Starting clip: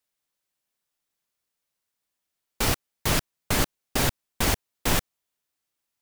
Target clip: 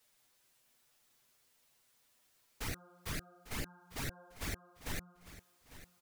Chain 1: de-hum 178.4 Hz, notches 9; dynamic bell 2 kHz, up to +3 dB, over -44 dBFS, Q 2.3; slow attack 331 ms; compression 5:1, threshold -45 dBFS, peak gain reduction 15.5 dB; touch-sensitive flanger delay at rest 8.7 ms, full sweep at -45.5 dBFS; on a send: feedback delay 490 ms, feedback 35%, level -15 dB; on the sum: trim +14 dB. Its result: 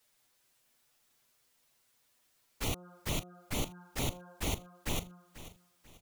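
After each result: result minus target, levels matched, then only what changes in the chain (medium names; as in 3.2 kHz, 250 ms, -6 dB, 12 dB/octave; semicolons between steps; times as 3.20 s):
echo 359 ms early; compression: peak gain reduction -5.5 dB
change: feedback delay 849 ms, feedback 35%, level -15 dB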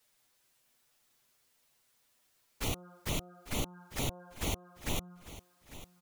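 compression: peak gain reduction -5.5 dB
change: compression 5:1, threshold -52 dBFS, peak gain reduction 21.5 dB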